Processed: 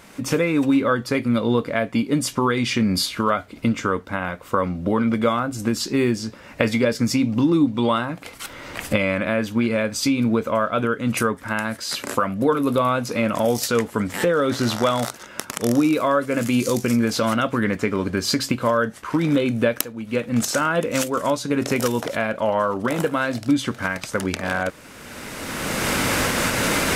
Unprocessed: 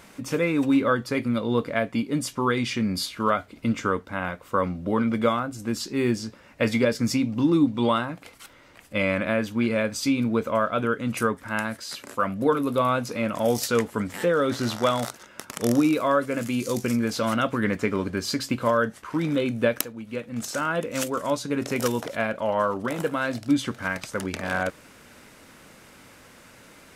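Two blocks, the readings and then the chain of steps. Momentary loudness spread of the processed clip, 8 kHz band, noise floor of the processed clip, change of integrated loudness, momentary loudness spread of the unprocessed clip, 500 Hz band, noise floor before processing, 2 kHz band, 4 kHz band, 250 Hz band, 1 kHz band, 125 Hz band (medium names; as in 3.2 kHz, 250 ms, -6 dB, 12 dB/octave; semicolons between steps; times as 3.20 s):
6 LU, +7.0 dB, -43 dBFS, +3.5 dB, 8 LU, +3.5 dB, -51 dBFS, +4.5 dB, +6.0 dB, +4.0 dB, +3.5 dB, +4.5 dB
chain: recorder AGC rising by 21 dB/s; trim +2 dB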